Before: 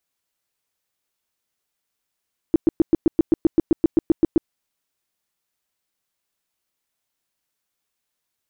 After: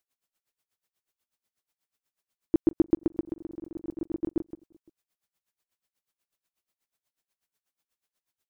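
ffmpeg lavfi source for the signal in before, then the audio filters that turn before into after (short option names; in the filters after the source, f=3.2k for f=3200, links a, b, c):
-f lavfi -i "aevalsrc='0.316*sin(2*PI*327*mod(t,0.13))*lt(mod(t,0.13),6/327)':d=1.95:s=44100"
-filter_complex "[0:a]acompressor=threshold=-16dB:ratio=6,asplit=2[a][b];[b]adelay=172,lowpass=f=1.6k:p=1,volume=-12dB,asplit=2[c][d];[d]adelay=172,lowpass=f=1.6k:p=1,volume=0.24,asplit=2[e][f];[f]adelay=172,lowpass=f=1.6k:p=1,volume=0.24[g];[c][e][g]amix=inputs=3:normalize=0[h];[a][h]amix=inputs=2:normalize=0,aeval=exprs='val(0)*pow(10,-22*(0.5-0.5*cos(2*PI*8.2*n/s))/20)':c=same"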